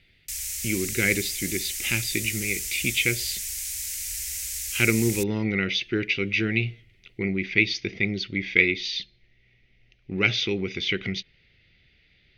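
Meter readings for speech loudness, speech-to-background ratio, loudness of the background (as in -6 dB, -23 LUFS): -25.5 LUFS, 4.0 dB, -29.5 LUFS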